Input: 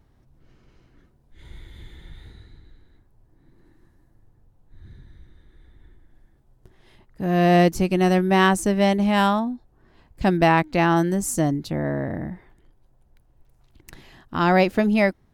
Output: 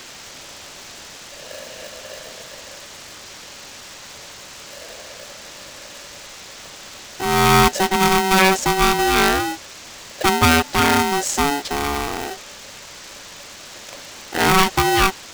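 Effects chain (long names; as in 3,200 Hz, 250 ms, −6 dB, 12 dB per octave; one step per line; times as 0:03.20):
high-shelf EQ 3,900 Hz +10.5 dB
bit-depth reduction 6 bits, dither triangular
downsampling to 16,000 Hz
ring modulator with a square carrier 570 Hz
level +2 dB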